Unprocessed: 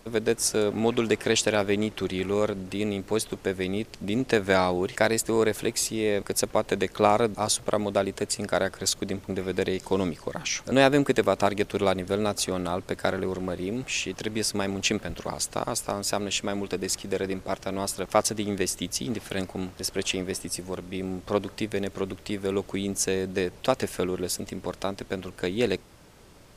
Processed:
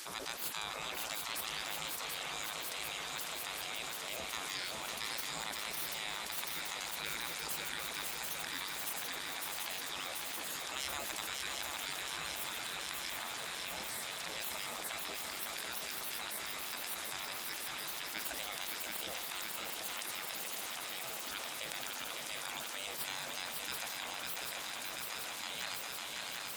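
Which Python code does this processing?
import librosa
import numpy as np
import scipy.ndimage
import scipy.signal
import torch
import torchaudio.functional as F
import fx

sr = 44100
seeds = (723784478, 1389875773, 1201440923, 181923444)

p1 = fx.tracing_dist(x, sr, depth_ms=0.036)
p2 = fx.graphic_eq_10(p1, sr, hz=(125, 250, 500, 2000), db=(7, -11, -5, -5))
p3 = fx.spec_gate(p2, sr, threshold_db=-20, keep='weak')
p4 = scipy.signal.sosfilt(scipy.signal.butter(2, 78.0, 'highpass', fs=sr, output='sos'), p3)
p5 = p4 + fx.echo_swing(p4, sr, ms=735, ratio=3, feedback_pct=71, wet_db=-7.5, dry=0)
p6 = fx.transient(p5, sr, attack_db=-2, sustain_db=3)
p7 = fx.env_flatten(p6, sr, amount_pct=70)
y = p7 * librosa.db_to_amplitude(-7.0)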